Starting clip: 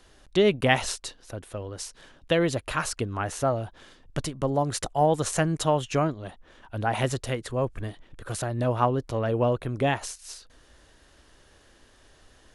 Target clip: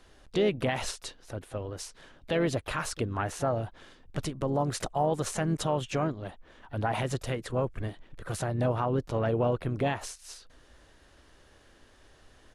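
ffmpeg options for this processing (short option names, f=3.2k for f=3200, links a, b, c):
-filter_complex "[0:a]alimiter=limit=-17.5dB:level=0:latency=1:release=86,highshelf=f=4.1k:g=-5,asplit=3[a][b][c];[b]asetrate=37084,aresample=44100,atempo=1.18921,volume=-16dB[d];[c]asetrate=55563,aresample=44100,atempo=0.793701,volume=-15dB[e];[a][d][e]amix=inputs=3:normalize=0,volume=-1dB"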